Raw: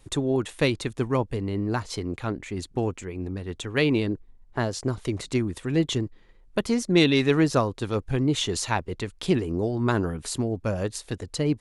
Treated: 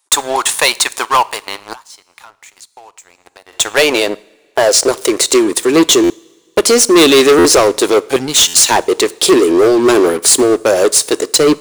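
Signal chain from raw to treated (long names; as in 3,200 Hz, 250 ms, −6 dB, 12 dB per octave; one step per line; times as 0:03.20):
bass and treble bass −10 dB, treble +13 dB
high-pass filter sweep 930 Hz → 370 Hz, 0:02.63–0:05.77
0:08.16–0:08.69: drawn EQ curve 230 Hz 0 dB, 330 Hz −21 dB, 3,100 Hz −1 dB
leveller curve on the samples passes 5
coupled-rooms reverb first 0.55 s, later 2.2 s, from −19 dB, DRR 18 dB
0:01.73–0:03.53: downward compressor 8 to 1, threshold −37 dBFS, peak gain reduction 27 dB
buffer that repeats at 0:06.03/0:07.38/0:08.47, samples 512, times 5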